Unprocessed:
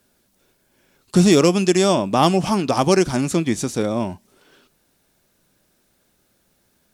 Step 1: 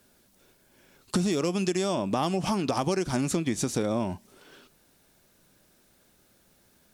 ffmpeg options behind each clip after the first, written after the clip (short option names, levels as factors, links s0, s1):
-filter_complex "[0:a]asplit=2[s0][s1];[s1]alimiter=limit=0.224:level=0:latency=1:release=120,volume=1[s2];[s0][s2]amix=inputs=2:normalize=0,acompressor=threshold=0.126:ratio=10,volume=0.562"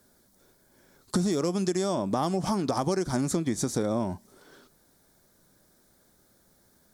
-af "equalizer=f=2700:t=o:w=0.47:g=-14"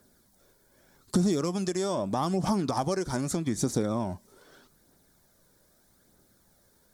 -af "aphaser=in_gain=1:out_gain=1:delay=2.3:decay=0.34:speed=0.81:type=triangular,volume=0.841"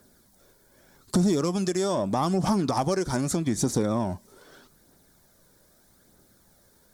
-af "asoftclip=type=tanh:threshold=0.133,volume=1.58"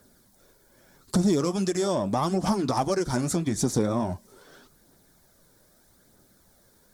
-af "flanger=delay=1.3:depth=8.5:regen=-50:speed=1.7:shape=triangular,volume=1.58"